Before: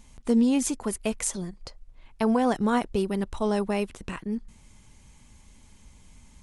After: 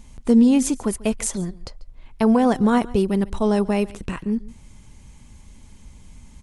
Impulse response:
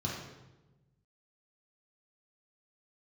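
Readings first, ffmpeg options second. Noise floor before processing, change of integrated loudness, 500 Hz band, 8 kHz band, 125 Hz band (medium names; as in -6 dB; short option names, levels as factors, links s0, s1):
-54 dBFS, +6.5 dB, +5.5 dB, +3.0 dB, +7.5 dB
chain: -af "lowshelf=f=410:g=5.5,aecho=1:1:141:0.0891,volume=1.41"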